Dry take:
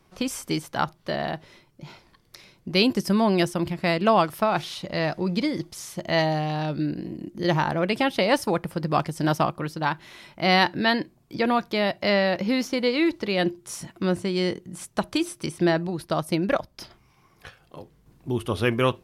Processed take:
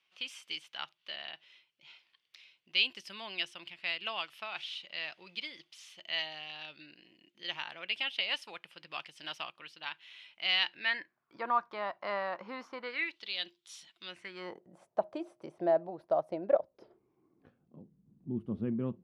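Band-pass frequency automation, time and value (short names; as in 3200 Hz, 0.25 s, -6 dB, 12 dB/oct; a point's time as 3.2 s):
band-pass, Q 3.8
10.71 s 2900 Hz
11.41 s 1100 Hz
12.78 s 1100 Hz
13.22 s 3500 Hz
14.04 s 3500 Hz
14.63 s 640 Hz
16.44 s 640 Hz
17.79 s 200 Hz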